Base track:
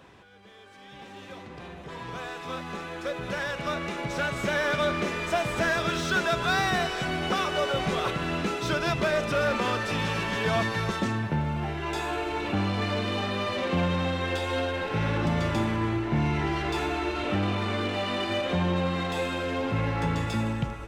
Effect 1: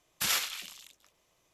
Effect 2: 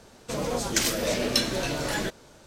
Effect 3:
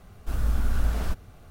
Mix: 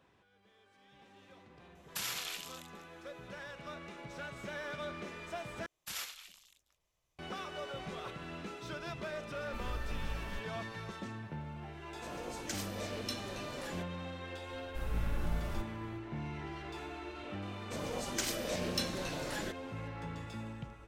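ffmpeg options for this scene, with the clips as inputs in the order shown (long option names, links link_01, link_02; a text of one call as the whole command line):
ffmpeg -i bed.wav -i cue0.wav -i cue1.wav -i cue2.wav -filter_complex "[1:a]asplit=2[link_01][link_02];[3:a]asplit=2[link_03][link_04];[2:a]asplit=2[link_05][link_06];[0:a]volume=-15.5dB[link_07];[link_01]acompressor=threshold=-34dB:ratio=6:attack=3.2:release=140:knee=1:detection=peak[link_08];[link_02]asubboost=boost=9:cutoff=120[link_09];[link_06]volume=12.5dB,asoftclip=hard,volume=-12.5dB[link_10];[link_07]asplit=2[link_11][link_12];[link_11]atrim=end=5.664[link_13];[link_09]atrim=end=1.53,asetpts=PTS-STARTPTS,volume=-12.5dB[link_14];[link_12]atrim=start=7.186[link_15];[link_08]atrim=end=1.53,asetpts=PTS-STARTPTS,volume=-0.5dB,afade=type=in:duration=0.004:curve=hsin,afade=type=out:start_time=1.526:duration=0.004:curve=hsin,adelay=1750[link_16];[link_03]atrim=end=1.5,asetpts=PTS-STARTPTS,volume=-16dB,afade=type=in:duration=0.004:curve=hsin,afade=type=out:start_time=1.496:duration=0.004:curve=hsin,adelay=9260[link_17];[link_05]atrim=end=2.46,asetpts=PTS-STARTPTS,volume=-16.5dB,afade=type=in:duration=0.004:curve=hsin,afade=type=out:start_time=2.456:duration=0.004:curve=hsin,adelay=11730[link_18];[link_04]atrim=end=1.5,asetpts=PTS-STARTPTS,volume=-11.5dB,afade=type=in:duration=0.004:curve=hsin,afade=type=out:start_time=1.496:duration=0.004:curve=hsin,adelay=14480[link_19];[link_10]atrim=end=2.46,asetpts=PTS-STARTPTS,volume=-11dB,afade=type=in:duration=0.004:curve=hsin,afade=type=out:start_time=2.456:duration=0.004:curve=hsin,adelay=17420[link_20];[link_13][link_14]acrossfade=duration=0.004:curve1=hsin:curve2=hsin[link_21];[link_21][link_15]acrossfade=duration=0.004:curve1=hsin:curve2=hsin[link_22];[link_22][link_16][link_17][link_18][link_19][link_20]amix=inputs=6:normalize=0" out.wav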